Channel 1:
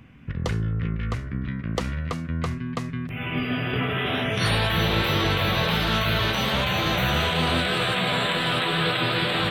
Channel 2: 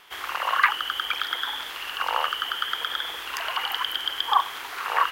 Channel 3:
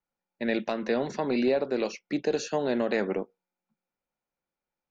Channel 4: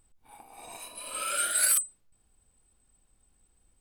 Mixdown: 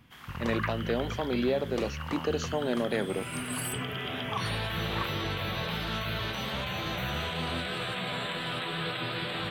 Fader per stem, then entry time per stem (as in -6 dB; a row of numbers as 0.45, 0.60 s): -10.0, -15.0, -3.0, -14.0 dB; 0.00, 0.00, 0.00, 1.95 s